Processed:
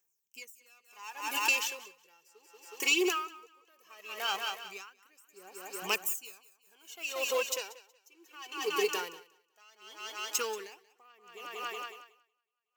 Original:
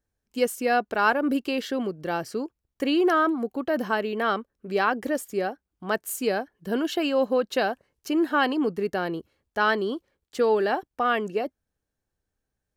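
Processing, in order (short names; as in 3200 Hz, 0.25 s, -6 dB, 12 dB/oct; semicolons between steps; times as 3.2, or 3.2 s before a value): self-modulated delay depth 0.089 ms; in parallel at -3 dB: crossover distortion -44 dBFS; on the sum: phaser 0.18 Hz, delay 2.8 ms, feedback 62%; differentiator; thinning echo 0.184 s, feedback 63%, high-pass 190 Hz, level -9 dB; compressor 3:1, threshold -35 dBFS, peak gain reduction 9.5 dB; ripple EQ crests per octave 0.74, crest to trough 10 dB; dB-linear tremolo 0.68 Hz, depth 33 dB; gain +8.5 dB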